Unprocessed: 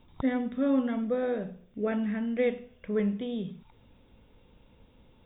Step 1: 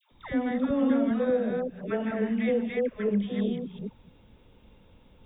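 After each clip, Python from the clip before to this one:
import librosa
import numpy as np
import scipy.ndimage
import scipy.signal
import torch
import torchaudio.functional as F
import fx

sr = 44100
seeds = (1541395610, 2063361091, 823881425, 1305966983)

y = fx.reverse_delay(x, sr, ms=199, wet_db=-1.0)
y = fx.dispersion(y, sr, late='lows', ms=117.0, hz=850.0)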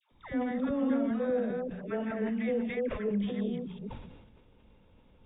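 y = scipy.signal.sosfilt(scipy.signal.butter(2, 3400.0, 'lowpass', fs=sr, output='sos'), x)
y = fx.sustainer(y, sr, db_per_s=46.0)
y = F.gain(torch.from_numpy(y), -5.0).numpy()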